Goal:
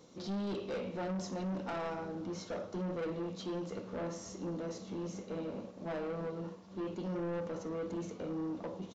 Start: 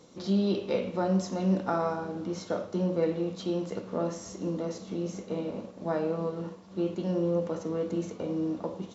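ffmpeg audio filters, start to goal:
-af "aresample=16000,asoftclip=type=tanh:threshold=0.0299,aresample=44100,volume=0.668"

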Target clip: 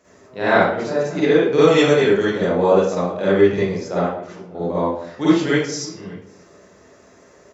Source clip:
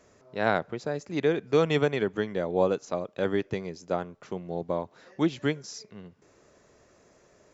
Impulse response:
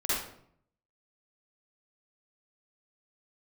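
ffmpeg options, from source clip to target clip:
-filter_complex "[0:a]asettb=1/sr,asplit=3[s0][s1][s2];[s0]atrim=end=4.014[s3];[s1]atrim=start=4.01:end=4.55,asetpts=PTS-STARTPTS,afade=t=in:d=0.004:c=qsin,afade=t=out:st=0.536:d=0.004:c=qsin,acompressor=threshold=0.00501:ratio=6[s4];[s2]atrim=start=4.546[s5];[s3][s4]acrossfade=d=0.004:c1=hsin:c2=qsin[s6];[s6][s5]acrossfade=d=0.004:c1=qsin:c2=hsin,asettb=1/sr,asplit=3[s7][s8][s9];[s7]atrim=end=5.214[s10];[s8]atrim=start=5.21:end=5.79,asetpts=PTS-STARTPTS,afade=t=in:d=0.004:c=qsin,afade=t=out:st=0.576:d=0.004:c=qsin,highshelf=f=5800:g=7.5[s11];[s9]atrim=start=5.786[s12];[s10][s11]acrossfade=d=0.004:c1=hsin:c2=qsin[s13];[s13][s12]acrossfade=d=0.004:c1=qsin:c2=hsin,highpass=73,asettb=1/sr,asplit=3[s14][s15][s16];[s14]atrim=end=1.634[s17];[s15]atrim=start=1.63:end=2.4,asetpts=PTS-STARTPTS,afade=t=in:d=0.004:c=qsin,afade=t=out:st=0.766:d=0.004:c=qsin,bass=f=250:g=-1,treble=f=4000:g=9[s18];[s16]atrim=start=2.396[s19];[s17][s18]acrossfade=d=0.004:c1=hsin:c2=qsin[s20];[s20][s19]acrossfade=d=0.004:c1=qsin:c2=hsin,asplit=2[s21][s22];[s22]adelay=583.1,volume=0.0708,highshelf=f=4000:g=-13.1[s23];[s21][s23]amix=inputs=2:normalize=0[s24];[1:a]atrim=start_sample=2205[s25];[s24][s25]afir=irnorm=-1:irlink=0,volume=1.26"

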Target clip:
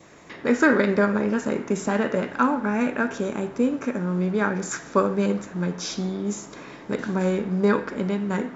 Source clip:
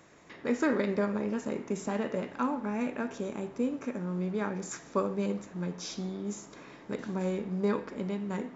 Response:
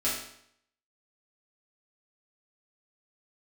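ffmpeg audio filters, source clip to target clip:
-af "adynamicequalizer=threshold=0.002:dfrequency=1500:dqfactor=3.6:tfrequency=1500:tqfactor=3.6:attack=5:release=100:ratio=0.375:range=4:mode=boostabove:tftype=bell,volume=2.66"

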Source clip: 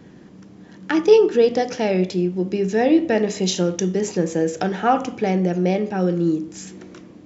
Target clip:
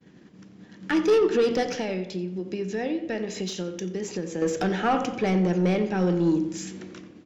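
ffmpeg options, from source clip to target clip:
-filter_complex "[0:a]agate=range=0.0224:threshold=0.0126:ratio=3:detection=peak,equalizer=f=800:t=o:w=2.9:g=-14,asettb=1/sr,asplit=3[s0][s1][s2];[s0]atrim=end=1.704[s3];[s1]atrim=start=1.7:end=4.42,asetpts=PTS-STARTPTS,afade=t=in:d=0.004:c=qsin,afade=t=out:st=2.716:d=0.004:c=qsin,acompressor=threshold=0.0224:ratio=6[s4];[s2]atrim=start=4.416[s5];[s3][s4]acrossfade=d=0.004:c1=hsin:c2=qsin[s6];[s6][s5]acrossfade=d=0.004:c1=qsin:c2=hsin,asplit=2[s7][s8];[s8]highpass=f=720:p=1,volume=10,asoftclip=type=tanh:threshold=0.266[s9];[s7][s9]amix=inputs=2:normalize=0,lowpass=f=1400:p=1,volume=0.501,asplit=2[s10][s11];[s11]adelay=89,lowpass=f=2800:p=1,volume=0.251,asplit=2[s12][s13];[s13]adelay=89,lowpass=f=2800:p=1,volume=0.53,asplit=2[s14][s15];[s15]adelay=89,lowpass=f=2800:p=1,volume=0.53,asplit=2[s16][s17];[s17]adelay=89,lowpass=f=2800:p=1,volume=0.53,asplit=2[s18][s19];[s19]adelay=89,lowpass=f=2800:p=1,volume=0.53,asplit=2[s20][s21];[s21]adelay=89,lowpass=f=2800:p=1,volume=0.53[s22];[s10][s12][s14][s16][s18][s20][s22]amix=inputs=7:normalize=0"

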